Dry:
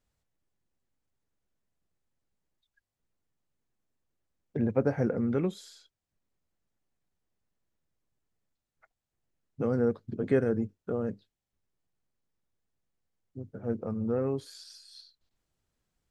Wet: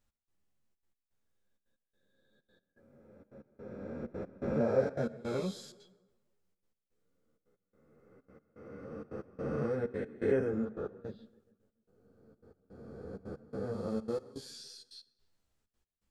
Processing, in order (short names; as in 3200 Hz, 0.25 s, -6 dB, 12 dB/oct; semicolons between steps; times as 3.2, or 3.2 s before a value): spectral swells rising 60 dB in 2.86 s; 4.6–5.61 thirty-one-band EQ 315 Hz -12 dB, 630 Hz +9 dB, 5000 Hz +4 dB; in parallel at -2.5 dB: compressor, threshold -35 dBFS, peak gain reduction 16.5 dB; on the sum: step gate "x..xxxxx." 163 bpm -24 dB; on a send: analogue delay 0.141 s, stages 2048, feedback 48%, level -19 dB; on the sum: plate-style reverb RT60 0.97 s, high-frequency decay 0.95×, DRR 19 dB; ensemble effect; gain -6 dB